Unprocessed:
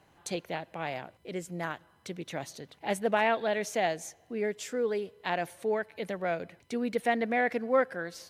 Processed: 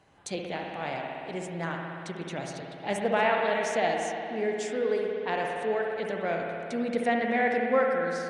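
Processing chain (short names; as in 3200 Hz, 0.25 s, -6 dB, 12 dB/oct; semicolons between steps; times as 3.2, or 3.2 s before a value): downsampling 22050 Hz; 5.12–5.56 low-pass opened by the level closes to 400 Hz, open at -28 dBFS; spring tank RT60 2.7 s, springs 59 ms, chirp 75 ms, DRR 0 dB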